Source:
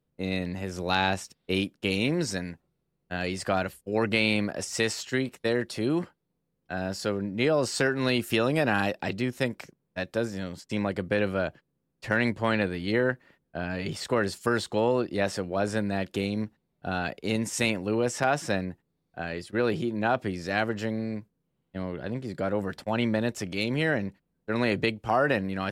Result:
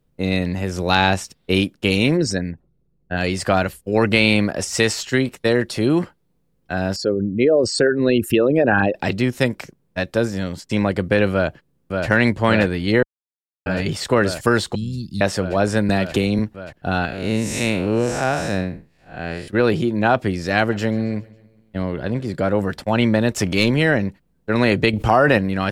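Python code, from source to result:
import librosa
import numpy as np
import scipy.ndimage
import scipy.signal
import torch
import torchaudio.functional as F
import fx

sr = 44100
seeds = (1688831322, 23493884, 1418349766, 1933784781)

y = fx.envelope_sharpen(x, sr, power=1.5, at=(2.16, 3.16), fade=0.02)
y = fx.envelope_sharpen(y, sr, power=2.0, at=(6.96, 8.95))
y = fx.echo_throw(y, sr, start_s=11.32, length_s=0.76, ms=580, feedback_pct=85, wet_db=-4.0)
y = fx.ellip_bandstop(y, sr, low_hz=200.0, high_hz=4200.0, order=3, stop_db=70, at=(14.75, 15.21))
y = fx.band_squash(y, sr, depth_pct=100, at=(15.89, 16.39))
y = fx.spec_blur(y, sr, span_ms=164.0, at=(17.05, 19.48))
y = fx.echo_feedback(y, sr, ms=137, feedback_pct=56, wet_db=-22.0, at=(20.58, 22.35))
y = fx.leveller(y, sr, passes=1, at=(23.31, 23.71))
y = fx.env_flatten(y, sr, amount_pct=50, at=(24.93, 25.38))
y = fx.edit(y, sr, fx.silence(start_s=13.03, length_s=0.63), tone=tone)
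y = fx.low_shelf(y, sr, hz=62.0, db=11.0)
y = y * librosa.db_to_amplitude(8.5)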